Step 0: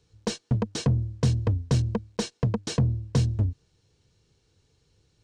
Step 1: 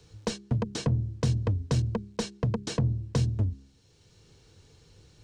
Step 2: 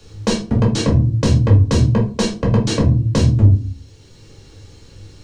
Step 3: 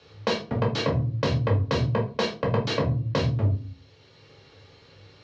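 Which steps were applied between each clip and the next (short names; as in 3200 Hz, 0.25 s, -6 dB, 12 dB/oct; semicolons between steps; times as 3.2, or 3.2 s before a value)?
de-hum 67.58 Hz, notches 6; three-band squash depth 40%; gain -2 dB
reverb RT60 0.35 s, pre-delay 4 ms, DRR -3 dB; gain +8.5 dB
speaker cabinet 160–4500 Hz, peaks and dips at 210 Hz -10 dB, 320 Hz -9 dB, 630 Hz +3 dB, 1200 Hz +3 dB, 2100 Hz +3 dB; gain -3.5 dB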